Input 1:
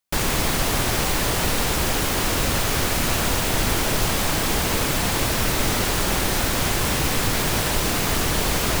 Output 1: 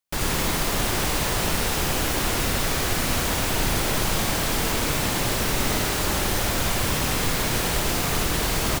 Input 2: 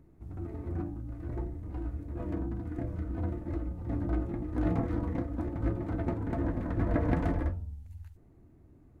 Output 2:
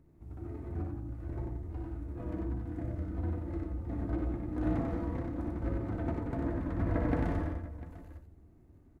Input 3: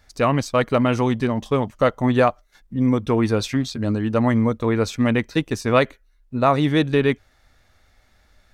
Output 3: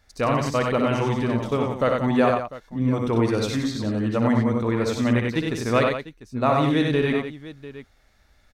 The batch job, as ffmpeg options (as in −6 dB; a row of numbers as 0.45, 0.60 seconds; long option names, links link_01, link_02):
-af "aecho=1:1:61|94|178|698:0.501|0.668|0.316|0.158,volume=-4.5dB"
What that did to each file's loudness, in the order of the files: −2.0, −2.0, −2.0 LU